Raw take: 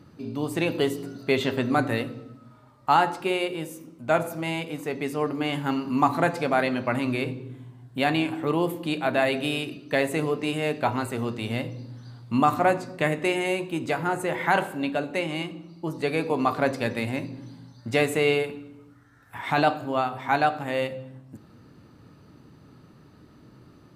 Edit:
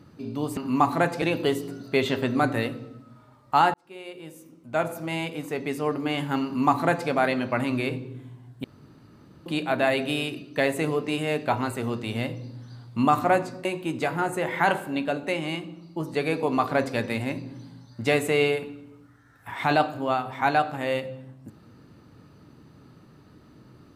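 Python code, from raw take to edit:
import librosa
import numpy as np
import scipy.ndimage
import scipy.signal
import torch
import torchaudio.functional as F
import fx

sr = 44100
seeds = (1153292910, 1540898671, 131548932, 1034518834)

y = fx.edit(x, sr, fx.fade_in_span(start_s=3.09, length_s=1.49),
    fx.duplicate(start_s=5.79, length_s=0.65, to_s=0.57),
    fx.room_tone_fill(start_s=7.99, length_s=0.82),
    fx.cut(start_s=13.0, length_s=0.52), tone=tone)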